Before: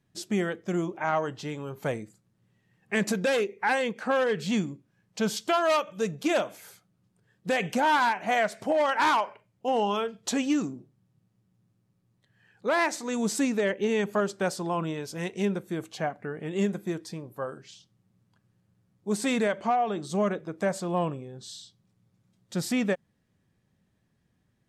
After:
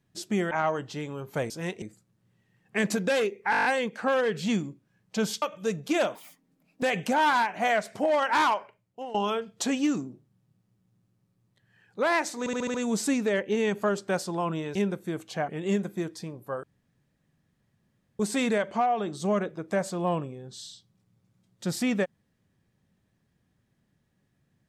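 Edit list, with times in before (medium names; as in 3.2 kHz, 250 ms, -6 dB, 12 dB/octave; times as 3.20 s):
0.51–1.00 s: delete
3.68 s: stutter 0.02 s, 8 plays
5.45–5.77 s: delete
6.50–7.49 s: speed 147%
9.19–9.81 s: fade out, to -17 dB
13.06 s: stutter 0.07 s, 6 plays
15.07–15.39 s: move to 1.99 s
16.12–16.38 s: delete
17.53–19.09 s: room tone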